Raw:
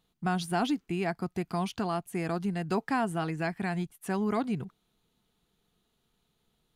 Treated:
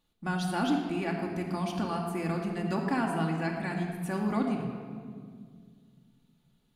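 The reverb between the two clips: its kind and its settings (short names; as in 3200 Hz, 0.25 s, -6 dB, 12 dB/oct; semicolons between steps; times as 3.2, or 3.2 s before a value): shoebox room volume 3400 m³, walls mixed, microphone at 2.4 m; gain -3.5 dB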